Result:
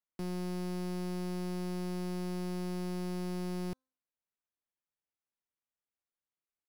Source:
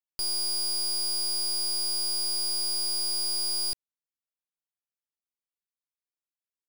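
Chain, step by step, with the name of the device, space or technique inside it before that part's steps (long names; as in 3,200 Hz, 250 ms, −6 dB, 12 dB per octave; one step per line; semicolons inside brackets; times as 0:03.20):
hum removal 260.1 Hz, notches 6
crushed at another speed (tape speed factor 1.25×; decimation without filtering 7×; tape speed factor 0.8×)
level −7.5 dB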